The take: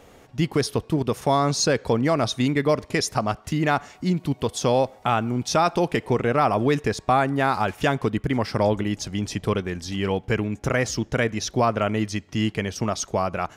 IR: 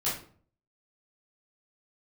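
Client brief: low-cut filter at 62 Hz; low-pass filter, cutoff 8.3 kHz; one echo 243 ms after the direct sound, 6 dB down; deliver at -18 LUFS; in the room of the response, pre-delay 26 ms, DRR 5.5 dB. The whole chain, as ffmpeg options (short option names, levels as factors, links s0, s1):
-filter_complex "[0:a]highpass=62,lowpass=8300,aecho=1:1:243:0.501,asplit=2[s0][s1];[1:a]atrim=start_sample=2205,adelay=26[s2];[s1][s2]afir=irnorm=-1:irlink=0,volume=0.224[s3];[s0][s3]amix=inputs=2:normalize=0,volume=1.5"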